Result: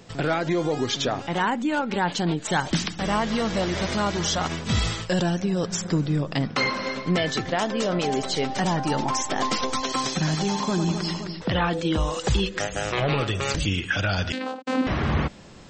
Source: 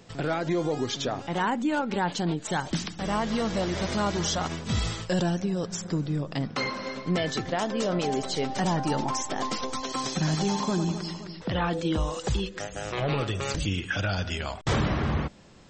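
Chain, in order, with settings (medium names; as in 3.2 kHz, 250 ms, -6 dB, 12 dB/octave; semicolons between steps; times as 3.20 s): dynamic bell 2.3 kHz, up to +3 dB, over -45 dBFS, Q 0.7; gain riding within 5 dB 0.5 s; 14.32–14.87 s: vocoder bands 8, saw 259 Hz; trim +3 dB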